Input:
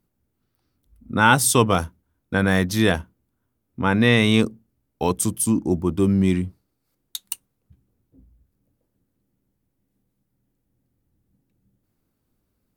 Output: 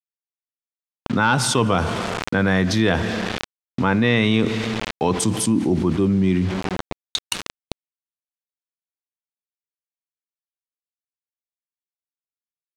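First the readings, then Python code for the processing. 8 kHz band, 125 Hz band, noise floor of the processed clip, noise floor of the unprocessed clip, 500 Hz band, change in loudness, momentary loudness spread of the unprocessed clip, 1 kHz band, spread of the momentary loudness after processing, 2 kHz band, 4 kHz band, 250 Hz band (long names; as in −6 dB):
−2.5 dB, +1.0 dB, below −85 dBFS, −75 dBFS, +1.0 dB, −0.5 dB, 16 LU, −0.5 dB, 13 LU, 0.0 dB, +2.0 dB, +1.5 dB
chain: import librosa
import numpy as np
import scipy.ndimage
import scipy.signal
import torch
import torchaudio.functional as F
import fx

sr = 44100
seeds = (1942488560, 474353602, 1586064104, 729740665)

p1 = fx.rider(x, sr, range_db=10, speed_s=0.5)
p2 = x + F.gain(torch.from_numpy(p1), 0.5).numpy()
p3 = scipy.signal.sosfilt(scipy.signal.butter(4, 90.0, 'highpass', fs=sr, output='sos'), p2)
p4 = fx.rev_plate(p3, sr, seeds[0], rt60_s=1.9, hf_ratio=0.95, predelay_ms=0, drr_db=17.5)
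p5 = fx.quant_dither(p4, sr, seeds[1], bits=6, dither='none')
p6 = scipy.signal.sosfilt(scipy.signal.butter(2, 4500.0, 'lowpass', fs=sr, output='sos'), p5)
p7 = fx.env_flatten(p6, sr, amount_pct=70)
y = F.gain(torch.from_numpy(p7), -8.0).numpy()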